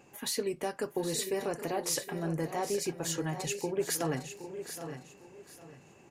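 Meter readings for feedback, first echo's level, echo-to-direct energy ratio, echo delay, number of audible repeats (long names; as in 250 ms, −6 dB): repeats not evenly spaced, −13.5 dB, −9.0 dB, 767 ms, 4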